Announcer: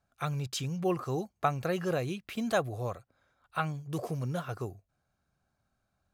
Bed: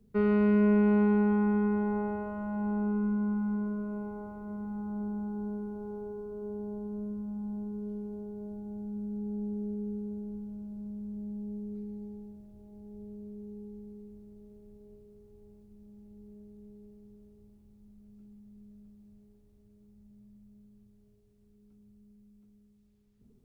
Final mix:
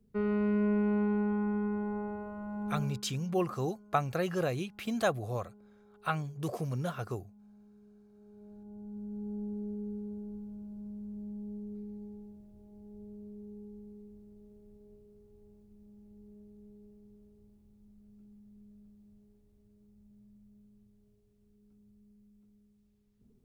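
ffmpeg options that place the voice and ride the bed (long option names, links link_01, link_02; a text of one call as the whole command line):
ffmpeg -i stem1.wav -i stem2.wav -filter_complex "[0:a]adelay=2500,volume=-0.5dB[link_01];[1:a]volume=13dB,afade=type=out:start_time=2.75:duration=0.27:silence=0.158489,afade=type=in:start_time=8.11:duration=1.19:silence=0.125893[link_02];[link_01][link_02]amix=inputs=2:normalize=0" out.wav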